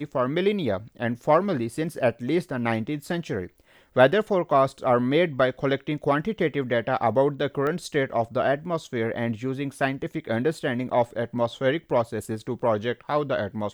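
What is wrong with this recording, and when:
7.67 s: pop -18 dBFS

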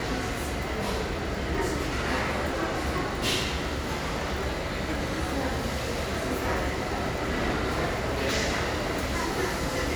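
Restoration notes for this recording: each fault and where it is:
crackle 43 per s -33 dBFS

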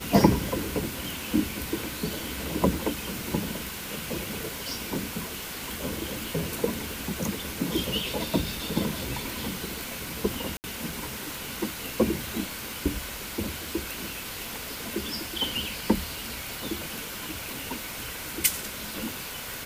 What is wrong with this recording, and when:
crackle 230 per s -38 dBFS
10.57–10.64 s: dropout 69 ms

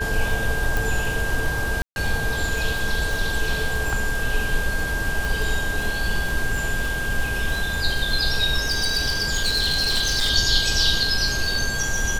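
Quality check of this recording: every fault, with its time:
crackle 37 per s -26 dBFS
whine 1.6 kHz -26 dBFS
0.77 s: pop
1.82–1.96 s: dropout 141 ms
5.25 s: pop
8.66–10.31 s: clipped -17 dBFS

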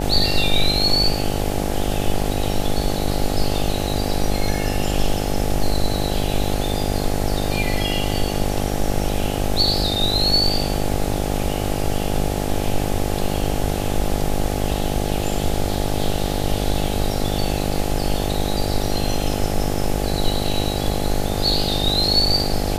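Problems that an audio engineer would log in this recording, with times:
buzz 50 Hz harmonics 17 -24 dBFS

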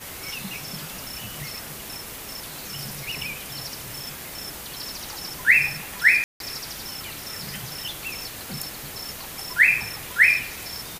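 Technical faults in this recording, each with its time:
6.24–6.40 s: dropout 162 ms

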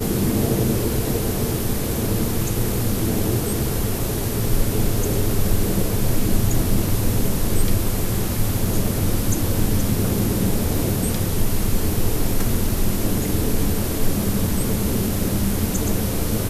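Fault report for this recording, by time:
6.89 s: dropout 2 ms

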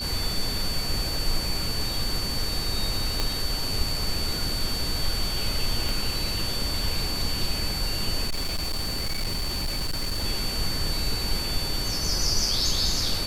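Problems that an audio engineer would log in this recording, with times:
whine 4.5 kHz -30 dBFS
3.20 s: pop -10 dBFS
5.89 s: pop
8.27–10.25 s: clipped -23.5 dBFS

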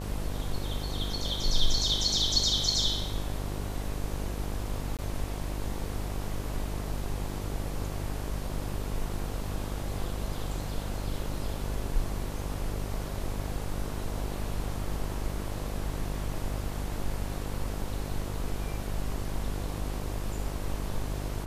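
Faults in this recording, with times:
buzz 50 Hz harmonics 23 -35 dBFS
4.97–4.99 s: dropout 17 ms

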